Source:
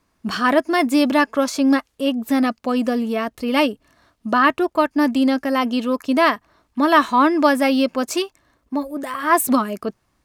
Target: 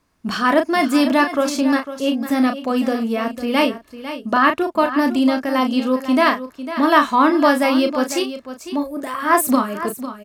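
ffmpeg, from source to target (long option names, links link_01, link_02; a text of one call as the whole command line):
ffmpeg -i in.wav -filter_complex "[0:a]asplit=2[link_01][link_02];[link_02]adelay=35,volume=-7dB[link_03];[link_01][link_03]amix=inputs=2:normalize=0,asplit=2[link_04][link_05];[link_05]aecho=0:1:501:0.251[link_06];[link_04][link_06]amix=inputs=2:normalize=0" out.wav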